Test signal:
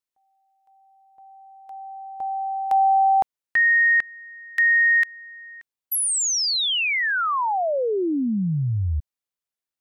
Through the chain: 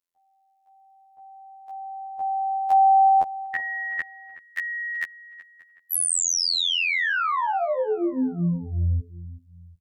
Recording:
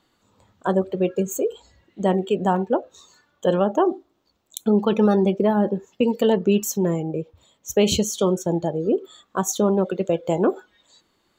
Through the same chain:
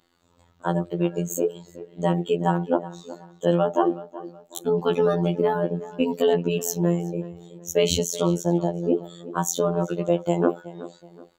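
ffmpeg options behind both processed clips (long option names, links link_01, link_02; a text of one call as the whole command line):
ffmpeg -i in.wav -filter_complex "[0:a]asplit=2[link_01][link_02];[link_02]adelay=373,lowpass=frequency=2600:poles=1,volume=-16dB,asplit=2[link_03][link_04];[link_04]adelay=373,lowpass=frequency=2600:poles=1,volume=0.36,asplit=2[link_05][link_06];[link_06]adelay=373,lowpass=frequency=2600:poles=1,volume=0.36[link_07];[link_01][link_03][link_05][link_07]amix=inputs=4:normalize=0,afftfilt=real='hypot(re,im)*cos(PI*b)':imag='0':win_size=2048:overlap=0.75,volume=2dB" out.wav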